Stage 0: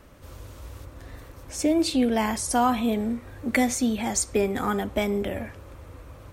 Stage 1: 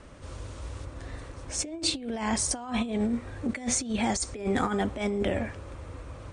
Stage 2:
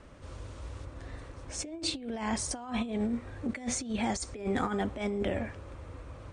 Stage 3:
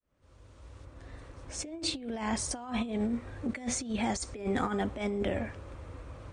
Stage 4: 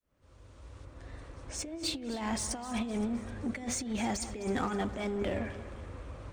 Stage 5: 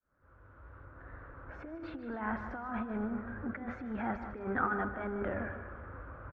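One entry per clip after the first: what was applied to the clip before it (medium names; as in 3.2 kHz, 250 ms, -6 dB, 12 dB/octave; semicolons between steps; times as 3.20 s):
steep low-pass 9.7 kHz 96 dB/octave; compressor with a negative ratio -27 dBFS, ratio -0.5; trim -1 dB
treble shelf 6.5 kHz -6 dB; trim -3.5 dB
fade-in on the opening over 1.78 s
in parallel at -10 dB: wavefolder -34 dBFS; on the sum: two-band feedback delay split 2.7 kHz, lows 185 ms, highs 259 ms, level -14 dB; trim -2 dB
four-pole ladder low-pass 1.6 kHz, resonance 70%; echo from a far wall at 26 m, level -11 dB; trim +7.5 dB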